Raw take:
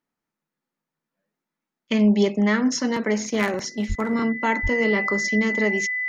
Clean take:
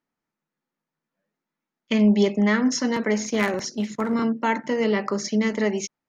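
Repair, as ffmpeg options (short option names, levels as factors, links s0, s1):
-filter_complex "[0:a]bandreject=f=2000:w=30,asplit=3[s0][s1][s2];[s0]afade=t=out:st=3.88:d=0.02[s3];[s1]highpass=f=140:w=0.5412,highpass=f=140:w=1.3066,afade=t=in:st=3.88:d=0.02,afade=t=out:st=4:d=0.02[s4];[s2]afade=t=in:st=4:d=0.02[s5];[s3][s4][s5]amix=inputs=3:normalize=0,asplit=3[s6][s7][s8];[s6]afade=t=out:st=4.62:d=0.02[s9];[s7]highpass=f=140:w=0.5412,highpass=f=140:w=1.3066,afade=t=in:st=4.62:d=0.02,afade=t=out:st=4.74:d=0.02[s10];[s8]afade=t=in:st=4.74:d=0.02[s11];[s9][s10][s11]amix=inputs=3:normalize=0"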